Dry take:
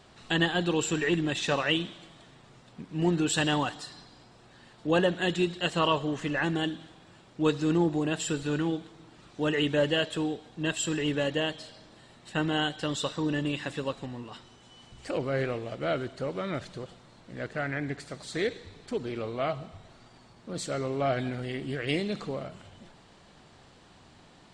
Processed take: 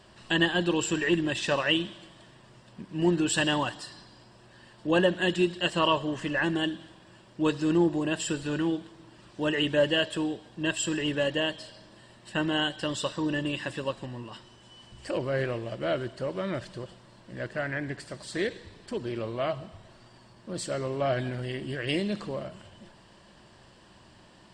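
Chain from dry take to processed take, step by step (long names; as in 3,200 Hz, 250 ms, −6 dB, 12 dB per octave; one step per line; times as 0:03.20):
EQ curve with evenly spaced ripples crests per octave 1.3, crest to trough 6 dB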